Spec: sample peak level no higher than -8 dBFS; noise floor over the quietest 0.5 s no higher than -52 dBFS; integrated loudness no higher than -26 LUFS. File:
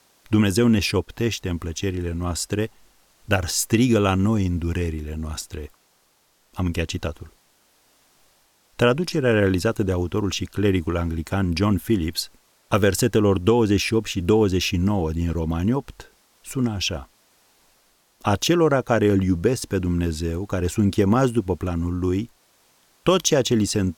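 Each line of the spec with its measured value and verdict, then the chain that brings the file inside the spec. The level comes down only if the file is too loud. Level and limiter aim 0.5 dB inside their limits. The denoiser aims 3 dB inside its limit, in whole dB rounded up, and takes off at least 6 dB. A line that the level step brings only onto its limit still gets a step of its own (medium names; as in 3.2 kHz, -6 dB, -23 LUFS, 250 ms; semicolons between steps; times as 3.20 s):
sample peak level -5.0 dBFS: fail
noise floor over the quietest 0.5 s -63 dBFS: pass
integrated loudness -22.0 LUFS: fail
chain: trim -4.5 dB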